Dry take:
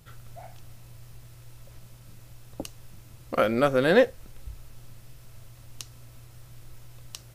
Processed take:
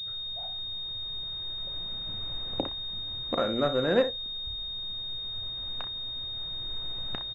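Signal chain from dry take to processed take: recorder AGC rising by 5.6 dB/s; hum notches 60/120 Hz; on a send: early reflections 33 ms -12 dB, 62 ms -11 dB; on the sum: class-D stage that switches slowly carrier 3.7 kHz; trim -5 dB

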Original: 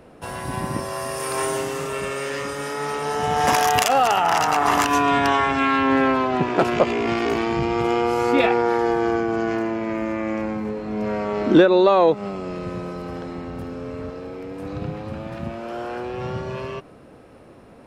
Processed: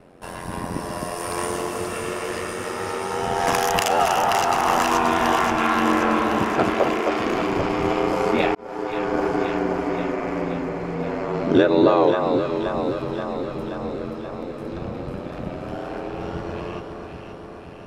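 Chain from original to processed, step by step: 6.73–7.24 s: steep high-pass 320 Hz 72 dB/octave; ring modulator 44 Hz; echo whose repeats swap between lows and highs 264 ms, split 1.3 kHz, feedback 81%, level -4 dB; 8.55–9.20 s: fade in

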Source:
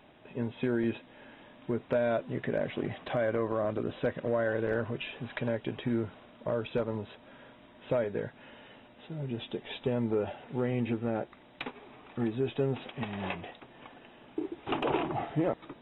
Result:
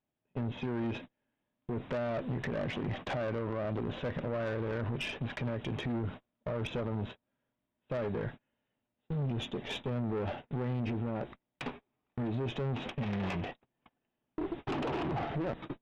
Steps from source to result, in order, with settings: gate -44 dBFS, range -37 dB; tone controls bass +7 dB, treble -3 dB; peak limiter -26.5 dBFS, peak gain reduction 11.5 dB; valve stage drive 36 dB, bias 0.45; trim +6 dB

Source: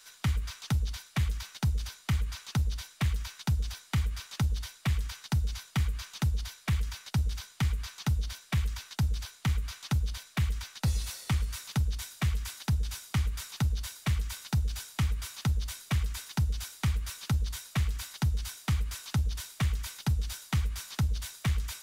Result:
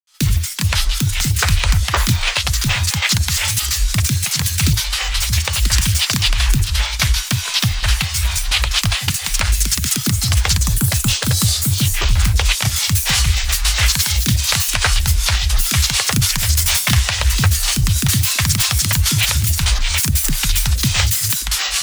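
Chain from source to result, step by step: recorder AGC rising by 36 dB/s; treble shelf 2.5 kHz +9 dB; time-frequency box 10.33–12.49 s, 940–4300 Hz -9 dB; peaking EQ 260 Hz -9 dB 2.3 oct; granulator 245 ms, grains 15 per s, spray 980 ms, pitch spread up and down by 12 st; gate with hold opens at -31 dBFS; loudness maximiser +21 dB; trim -1 dB

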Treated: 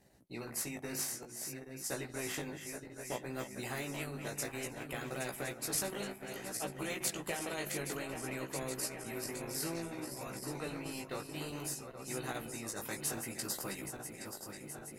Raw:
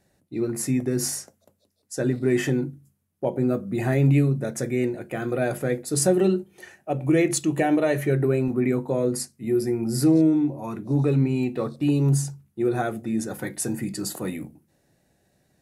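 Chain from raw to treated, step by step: backward echo that repeats 428 ms, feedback 75%, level -12 dB; harmonic-percussive split harmonic -7 dB; transient shaper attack +2 dB, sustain -7 dB; chorus 0.56 Hz, delay 16 ms, depth 4.1 ms; speed mistake 24 fps film run at 25 fps; spectrum-flattening compressor 2:1; trim -7.5 dB

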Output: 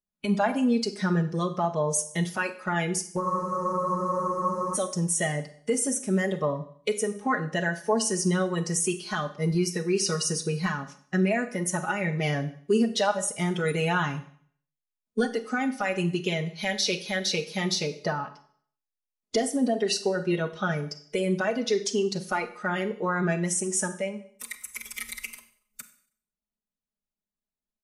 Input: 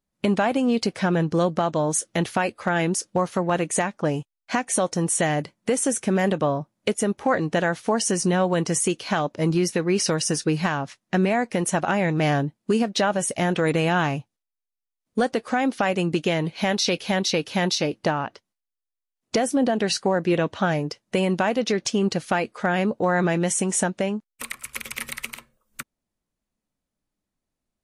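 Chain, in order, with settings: comb 4.8 ms, depth 88%; spectral noise reduction 11 dB; Schroeder reverb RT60 0.55 s, combs from 31 ms, DRR 10.5 dB; spectral freeze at 3.22 s, 1.53 s; trim -5 dB

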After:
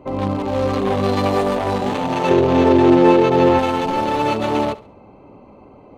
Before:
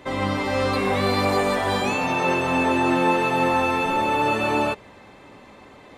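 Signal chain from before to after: local Wiener filter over 25 samples; 2.30–3.59 s: fifteen-band graphic EQ 100 Hz +11 dB, 400 Hz +10 dB, 10 kHz -11 dB; thinning echo 69 ms, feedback 34%, level -17.5 dB; trim +4.5 dB

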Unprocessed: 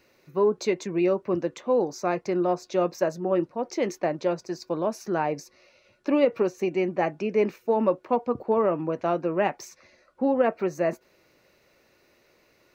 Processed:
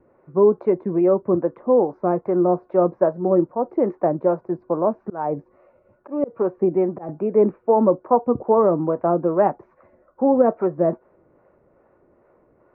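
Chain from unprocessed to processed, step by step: low-pass 1.2 kHz 24 dB/octave; 4.74–7.09 s: slow attack 272 ms; harmonic tremolo 2.4 Hz, depth 50%, crossover 460 Hz; trim +9 dB

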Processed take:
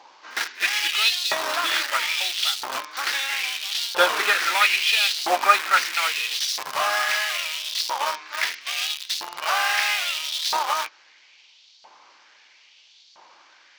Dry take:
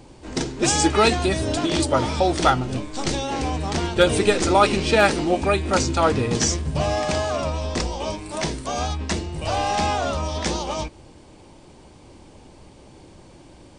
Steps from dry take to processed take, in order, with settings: CVSD coder 32 kbps; in parallel at -5 dB: bit crusher 4-bit; on the sum: pre-echo 58 ms -22.5 dB; LFO high-pass saw up 0.76 Hz 890–4300 Hz

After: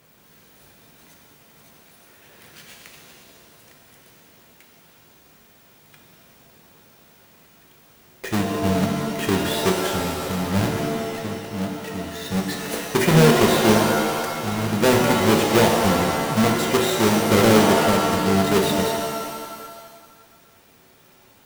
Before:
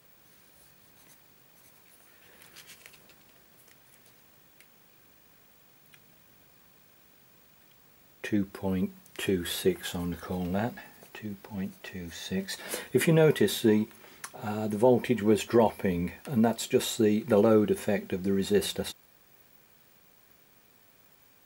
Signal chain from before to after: square wave that keeps the level; pitch-shifted reverb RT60 1.7 s, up +7 st, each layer -2 dB, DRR 2.5 dB

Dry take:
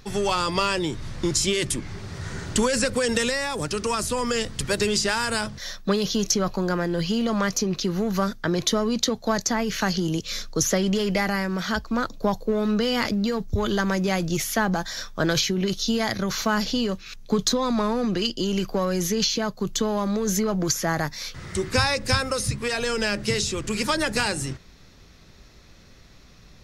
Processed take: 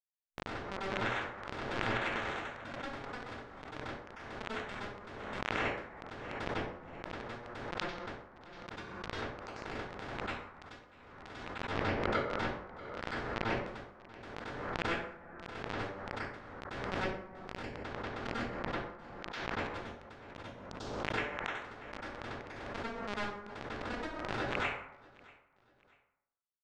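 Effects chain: rattle on loud lows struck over -33 dBFS, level -17 dBFS; steep high-pass 170 Hz 96 dB/octave; peaking EQ 380 Hz -8.5 dB 1.8 oct; hum notches 50/100/150/200/250/300/350 Hz; reverse; compression 20:1, threshold -38 dBFS, peak gain reduction 21.5 dB; reverse; bit crusher 5-bit; tape spacing loss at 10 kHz 44 dB; on a send: feedback delay 639 ms, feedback 34%, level -23.5 dB; on the sum: plate-style reverb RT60 0.79 s, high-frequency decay 0.5×, pre-delay 85 ms, DRR -9.5 dB; swell ahead of each attack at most 29 dB/s; trim +11.5 dB

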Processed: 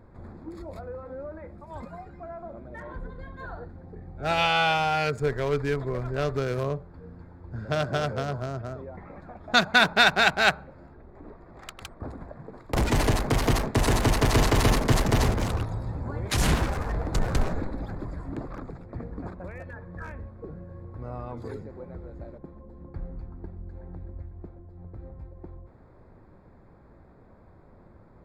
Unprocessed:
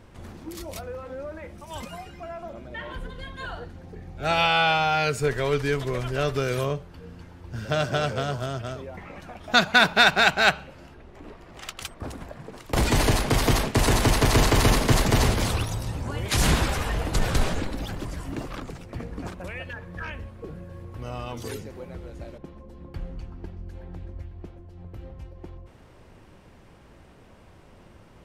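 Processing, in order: local Wiener filter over 15 samples; trim -1.5 dB

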